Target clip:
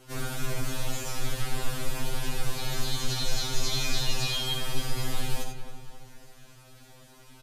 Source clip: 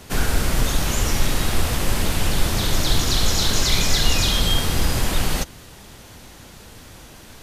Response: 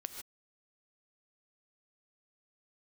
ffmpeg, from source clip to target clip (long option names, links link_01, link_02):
-filter_complex "[0:a]asplit=2[link_01][link_02];[link_02]aeval=exprs='clip(val(0),-1,0.237)':channel_layout=same,volume=-9.5dB[link_03];[link_01][link_03]amix=inputs=2:normalize=0,asplit=2[link_04][link_05];[link_05]adelay=274,lowpass=frequency=2200:poles=1,volume=-9.5dB,asplit=2[link_06][link_07];[link_07]adelay=274,lowpass=frequency=2200:poles=1,volume=0.48,asplit=2[link_08][link_09];[link_09]adelay=274,lowpass=frequency=2200:poles=1,volume=0.48,asplit=2[link_10][link_11];[link_11]adelay=274,lowpass=frequency=2200:poles=1,volume=0.48,asplit=2[link_12][link_13];[link_13]adelay=274,lowpass=frequency=2200:poles=1,volume=0.48[link_14];[link_04][link_06][link_08][link_10][link_12][link_14]amix=inputs=6:normalize=0[link_15];[1:a]atrim=start_sample=2205,asetrate=74970,aresample=44100[link_16];[link_15][link_16]afir=irnorm=-1:irlink=0,afftfilt=real='re*2.45*eq(mod(b,6),0)':imag='im*2.45*eq(mod(b,6),0)':win_size=2048:overlap=0.75,volume=-4dB"